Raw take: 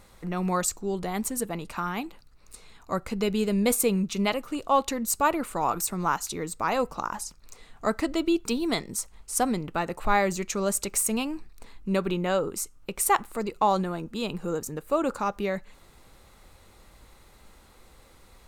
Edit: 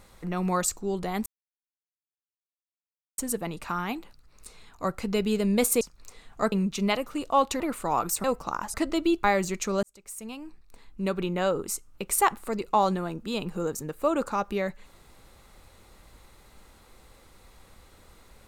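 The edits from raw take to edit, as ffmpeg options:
ffmpeg -i in.wav -filter_complex "[0:a]asplit=9[link_01][link_02][link_03][link_04][link_05][link_06][link_07][link_08][link_09];[link_01]atrim=end=1.26,asetpts=PTS-STARTPTS,afade=type=out:start_time=1.256:duration=0.004:curve=hsin,apad=pad_dur=1.92[link_10];[link_02]atrim=start=1.26:end=3.892,asetpts=PTS-STARTPTS,afade=type=in:duration=0.004:curve=hsin[link_11];[link_03]atrim=start=7.248:end=7.962[link_12];[link_04]atrim=start=3.888:end=4.972[link_13];[link_05]atrim=start=5.308:end=5.952[link_14];[link_06]atrim=start=6.748:end=7.252[link_15];[link_07]atrim=start=7.958:end=8.462[link_16];[link_08]atrim=start=10.118:end=10.71,asetpts=PTS-STARTPTS,afade=type=out:start_time=0.588:duration=0.004:curve=hsin[link_17];[link_09]atrim=start=10.71,asetpts=PTS-STARTPTS,afade=type=in:duration=1.7[link_18];[link_10][link_11]concat=n=2:v=0:a=1[link_19];[link_19][link_12]acrossfade=duration=0.004:curve1=hsin:curve2=hsin[link_20];[link_20][link_13]acrossfade=duration=0.004:curve1=hsin:curve2=hsin[link_21];[link_21][link_14]acrossfade=duration=0.004:curve1=hsin:curve2=hsin[link_22];[link_22][link_15]acrossfade=duration=0.004:curve1=hsin:curve2=hsin[link_23];[link_23][link_16]acrossfade=duration=0.004:curve1=hsin:curve2=hsin[link_24];[link_17][link_18]concat=n=2:v=0:a=1[link_25];[link_24][link_25]acrossfade=duration=0.004:curve1=hsin:curve2=hsin" out.wav

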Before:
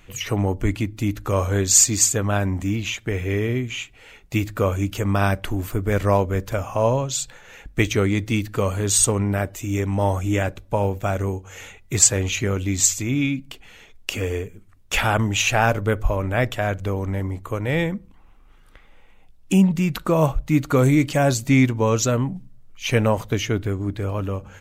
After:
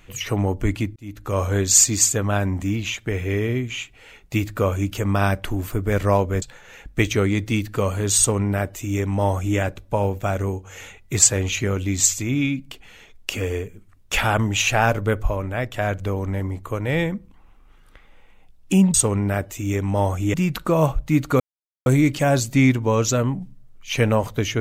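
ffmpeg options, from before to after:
ffmpeg -i in.wav -filter_complex "[0:a]asplit=7[link_01][link_02][link_03][link_04][link_05][link_06][link_07];[link_01]atrim=end=0.96,asetpts=PTS-STARTPTS,afade=type=out:start_time=0.956:duration=0.004:curve=hsin[link_08];[link_02]atrim=start=0.96:end=6.422,asetpts=PTS-STARTPTS,afade=type=in:duration=0.48[link_09];[link_03]atrim=start=7.218:end=16.54,asetpts=PTS-STARTPTS,afade=type=out:start_time=8.732:duration=0.59:silence=0.446684[link_10];[link_04]atrim=start=16.54:end=19.742,asetpts=PTS-STARTPTS,afade=type=in:duration=0.004:curve=hsin:silence=0.446684[link_11];[link_05]atrim=start=8.978:end=10.382[link_12];[link_06]atrim=start=19.738:end=20.8,asetpts=PTS-STARTPTS,afade=type=out:start_time=1.058:duration=0.004:curve=hsin,apad=pad_dur=0.46[link_13];[link_07]atrim=start=20.8,asetpts=PTS-STARTPTS,afade=type=in:duration=0.004:curve=hsin[link_14];[link_08][link_09]concat=n=2:v=0:a=1[link_15];[link_10][link_11]concat=n=2:v=0:a=1[link_16];[link_15][link_16]acrossfade=duration=0.004:curve1=hsin:curve2=hsin[link_17];[link_17][link_12]acrossfade=duration=0.004:curve1=hsin:curve2=hsin[link_18];[link_13][link_14]concat=n=2:v=0:a=1[link_19];[link_18][link_19]acrossfade=duration=0.004:curve1=hsin:curve2=hsin" out.wav

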